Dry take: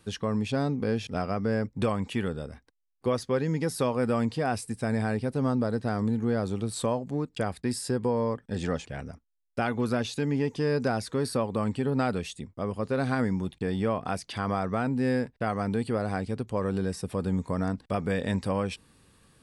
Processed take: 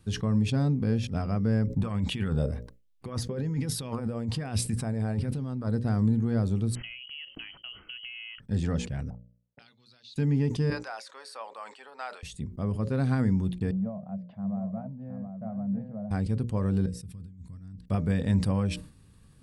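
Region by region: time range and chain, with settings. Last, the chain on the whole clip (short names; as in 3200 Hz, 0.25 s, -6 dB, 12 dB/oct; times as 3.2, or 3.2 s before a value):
1.67–5.67 negative-ratio compressor -33 dBFS + LFO bell 1.2 Hz 470–3600 Hz +9 dB
6.75–8.4 bell 1100 Hz +3.5 dB 0.44 oct + compressor 10:1, threshold -32 dBFS + inverted band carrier 3100 Hz
9.1–10.16 bell 140 Hz +13 dB 1.1 oct + auto-wah 480–4100 Hz, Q 7.6, up, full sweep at -22.5 dBFS
10.7–12.23 HPF 720 Hz 24 dB/oct + air absorption 59 m
13.71–16.11 double band-pass 350 Hz, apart 1.7 oct + air absorption 260 m + echo 0.714 s -7.5 dB
16.86–17.88 passive tone stack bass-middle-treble 6-0-2 + negative-ratio compressor -47 dBFS, ratio -0.5
whole clip: tone controls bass +14 dB, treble +2 dB; notches 60/120/180/240/300/360/420/480/540/600 Hz; sustainer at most 120 dB/s; gain -6 dB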